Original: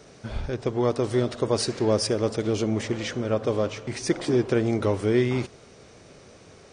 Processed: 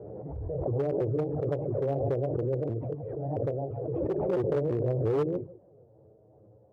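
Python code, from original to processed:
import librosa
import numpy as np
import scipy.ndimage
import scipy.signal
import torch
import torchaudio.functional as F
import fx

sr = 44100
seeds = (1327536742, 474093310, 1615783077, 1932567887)

y = fx.pitch_ramps(x, sr, semitones=6.0, every_ms=336)
y = y + 10.0 ** (-14.5 / 20.0) * np.pad(y, (int(148 * sr / 1000.0), 0))[:len(y)]
y = fx.env_flanger(y, sr, rest_ms=11.3, full_db=-21.0)
y = fx.ladder_lowpass(y, sr, hz=610.0, resonance_pct=35)
y = fx.low_shelf(y, sr, hz=160.0, db=7.0)
y = fx.clip_asym(y, sr, top_db=-26.5, bottom_db=-20.0)
y = scipy.signal.sosfilt(scipy.signal.butter(4, 71.0, 'highpass', fs=sr, output='sos'), y)
y = fx.peak_eq(y, sr, hz=230.0, db=-11.0, octaves=0.63)
y = fx.pre_swell(y, sr, db_per_s=22.0)
y = F.gain(torch.from_numpy(y), 2.0).numpy()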